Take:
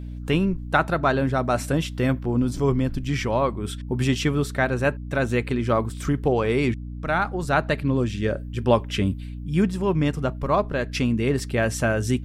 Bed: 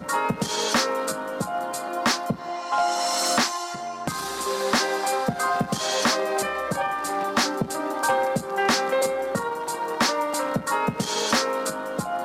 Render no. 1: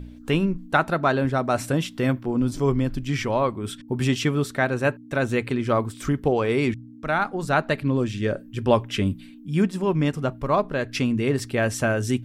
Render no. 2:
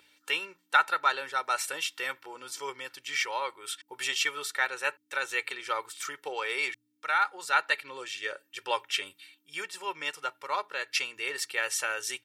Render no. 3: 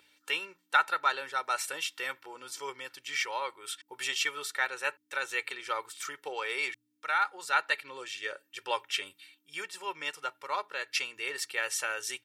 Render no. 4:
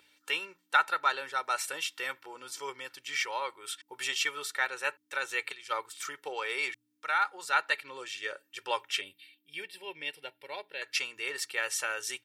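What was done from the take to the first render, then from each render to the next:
de-hum 60 Hz, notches 3
high-pass 1.4 kHz 12 dB/octave; comb 2.2 ms, depth 75%
trim -2 dB
5.52–5.92 s: three bands expanded up and down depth 100%; 9.01–10.82 s: static phaser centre 2.9 kHz, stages 4

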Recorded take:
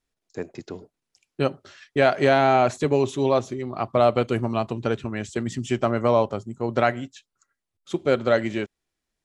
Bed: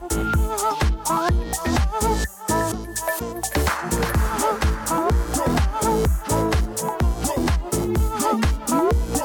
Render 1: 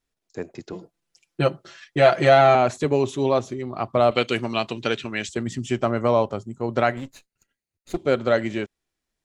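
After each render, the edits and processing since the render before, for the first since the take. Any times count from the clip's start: 0.72–2.55 s: comb 5.9 ms, depth 96%; 4.11–5.29 s: frequency weighting D; 6.97–7.97 s: comb filter that takes the minimum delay 0.46 ms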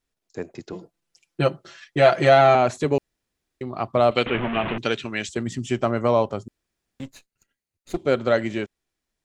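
2.98–3.61 s: room tone; 4.26–4.78 s: one-bit delta coder 16 kbps, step -21 dBFS; 6.48–7.00 s: room tone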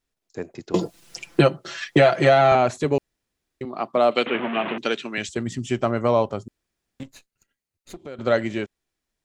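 0.74–2.52 s: three bands compressed up and down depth 100%; 3.65–5.18 s: high-pass 190 Hz 24 dB/octave; 7.03–8.19 s: compression 3:1, threshold -38 dBFS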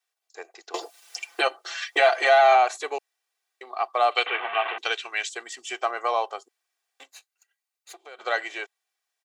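high-pass 630 Hz 24 dB/octave; comb 2.6 ms, depth 61%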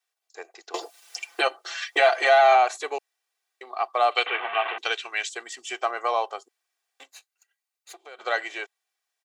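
no audible change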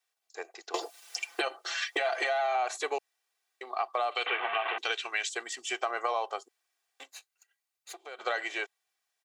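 peak limiter -16 dBFS, peak gain reduction 10 dB; compression, threshold -26 dBFS, peak gain reduction 6.5 dB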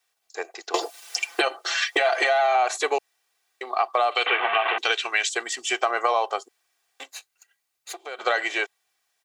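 trim +8.5 dB

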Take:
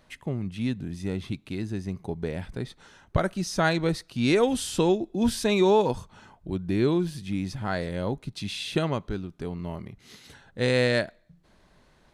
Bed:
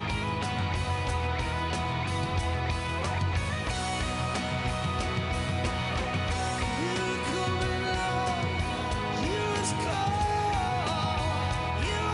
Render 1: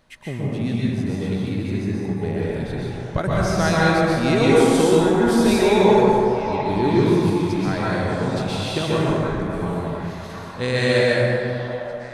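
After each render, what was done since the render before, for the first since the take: repeats whose band climbs or falls 703 ms, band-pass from 860 Hz, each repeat 0.7 oct, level -5 dB; plate-style reverb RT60 2.7 s, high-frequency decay 0.4×, pre-delay 110 ms, DRR -6.5 dB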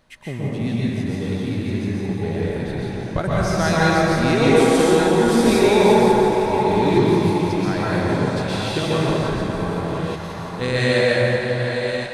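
chunks repeated in reverse 635 ms, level -7.5 dB; on a send: thinning echo 171 ms, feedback 75%, high-pass 420 Hz, level -9.5 dB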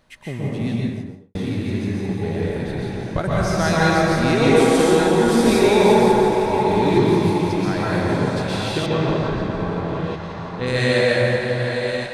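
0.69–1.35 s: studio fade out; 8.86–10.67 s: distance through air 130 m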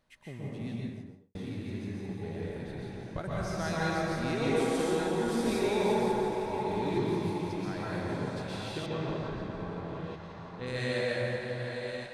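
trim -14 dB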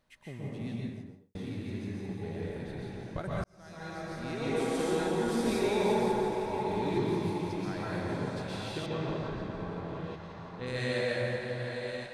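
3.44–5.03 s: fade in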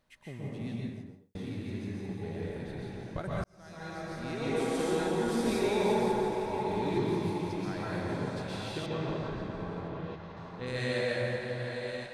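9.88–10.37 s: distance through air 84 m

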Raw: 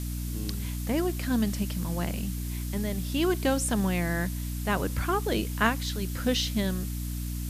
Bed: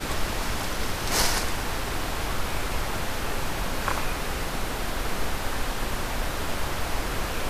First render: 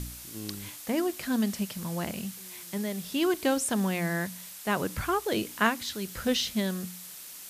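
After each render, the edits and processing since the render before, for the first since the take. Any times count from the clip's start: de-hum 60 Hz, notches 5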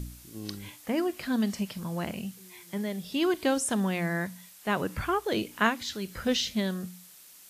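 noise print and reduce 8 dB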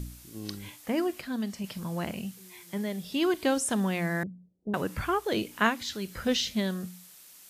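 1.21–1.64 s: gain -5 dB; 4.23–4.74 s: inverse Chebyshev low-pass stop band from 1.4 kHz, stop band 60 dB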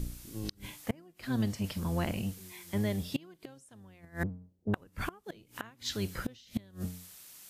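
octave divider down 1 oct, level -2 dB; inverted gate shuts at -20 dBFS, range -28 dB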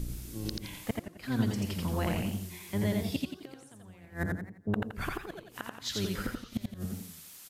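on a send: delay 85 ms -3.5 dB; on the sum: modulated delay 87 ms, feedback 38%, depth 147 cents, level -8 dB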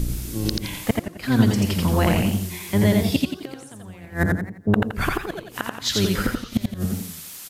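trim +12 dB

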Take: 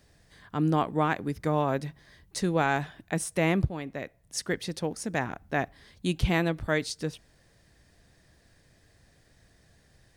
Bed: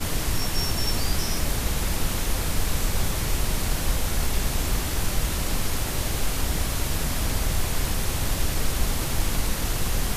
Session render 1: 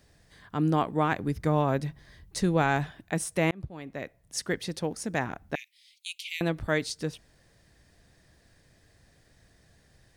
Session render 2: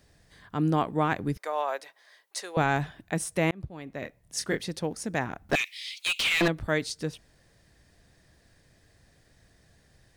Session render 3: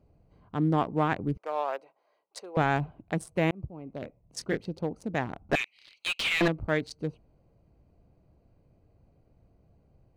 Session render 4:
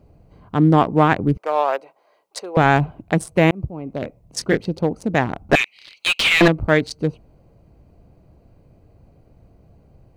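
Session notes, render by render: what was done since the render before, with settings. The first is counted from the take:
1.12–2.92 s: bass shelf 120 Hz +9 dB; 3.51–4.03 s: fade in; 5.55–6.41 s: steep high-pass 2.2 kHz 72 dB/octave
1.37–2.57 s: high-pass 560 Hz 24 dB/octave; 4.00–4.61 s: doubling 26 ms -5 dB; 5.49–6.48 s: overdrive pedal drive 32 dB, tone 2.8 kHz, clips at -14.5 dBFS
local Wiener filter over 25 samples; treble shelf 5.1 kHz -7 dB
trim +11.5 dB; peak limiter -3 dBFS, peak gain reduction 2.5 dB

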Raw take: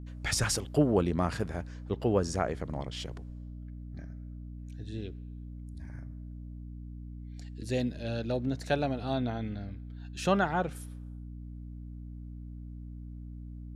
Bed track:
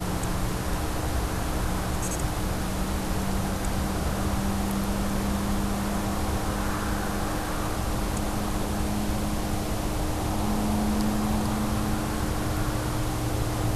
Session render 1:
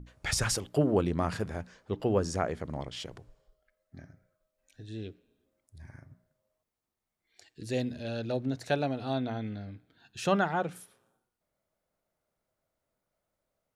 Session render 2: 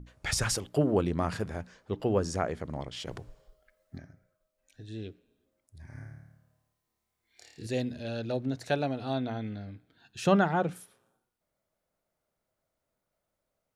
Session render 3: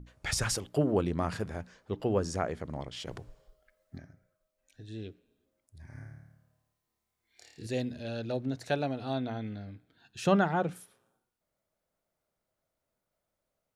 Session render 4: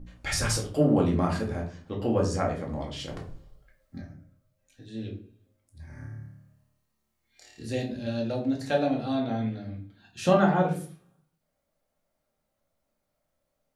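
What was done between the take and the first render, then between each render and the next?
hum notches 60/120/180/240/300 Hz
3.07–3.98 s: gain +7 dB; 5.86–7.67 s: flutter echo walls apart 4.7 m, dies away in 0.89 s; 10.26–10.74 s: bass shelf 480 Hz +6 dB
trim -1.5 dB
simulated room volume 320 m³, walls furnished, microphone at 2.2 m

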